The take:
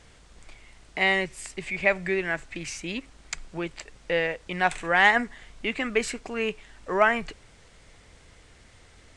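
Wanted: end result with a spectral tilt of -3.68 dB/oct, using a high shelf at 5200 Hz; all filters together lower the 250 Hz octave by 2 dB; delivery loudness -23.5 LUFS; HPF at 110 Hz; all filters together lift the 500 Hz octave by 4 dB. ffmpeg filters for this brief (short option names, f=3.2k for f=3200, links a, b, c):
-af "highpass=110,equalizer=f=250:t=o:g=-5.5,equalizer=f=500:t=o:g=6.5,highshelf=f=5.2k:g=-6.5,volume=1.5dB"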